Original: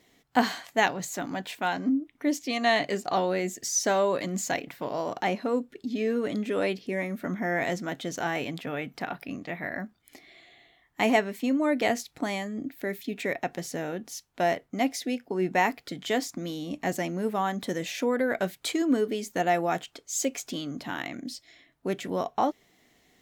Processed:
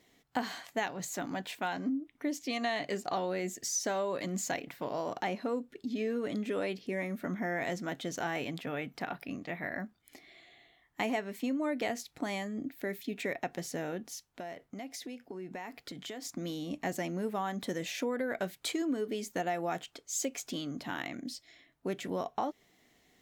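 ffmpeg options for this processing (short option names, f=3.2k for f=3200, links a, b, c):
-filter_complex "[0:a]asettb=1/sr,asplit=3[a][b][c];[a]atrim=end=14.144[d];[b]atrim=start=14.14:end=16.25,asetpts=PTS-STARTPTS,afade=t=in:d=0.004:c=qsin,afade=t=out:st=2.106:d=0.004:c=qsin,acompressor=threshold=-35dB:ratio=8:attack=3.2:release=140:knee=1:detection=peak[e];[c]atrim=start=16.246[f];[d][e]acrossfade=d=0.004:c1=hsin:c2=qsin[g];[g][f]acrossfade=d=0.004:c1=qsin:c2=hsin,acompressor=threshold=-26dB:ratio=5,volume=-3.5dB"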